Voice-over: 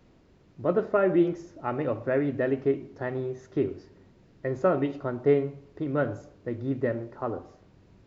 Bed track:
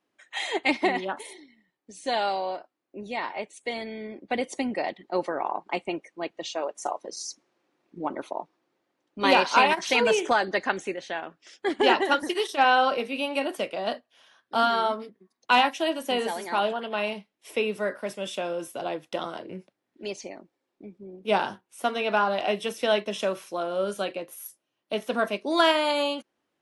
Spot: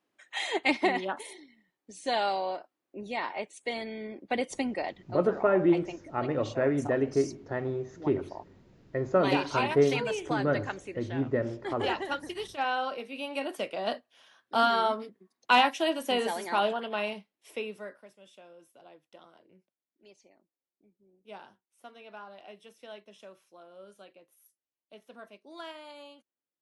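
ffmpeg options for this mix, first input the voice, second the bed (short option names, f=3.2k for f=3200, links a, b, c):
-filter_complex "[0:a]adelay=4500,volume=-1dB[a];[1:a]volume=6.5dB,afade=t=out:st=4.59:d=0.6:silence=0.398107,afade=t=in:st=13.07:d=0.94:silence=0.375837,afade=t=out:st=16.7:d=1.4:silence=0.0891251[b];[a][b]amix=inputs=2:normalize=0"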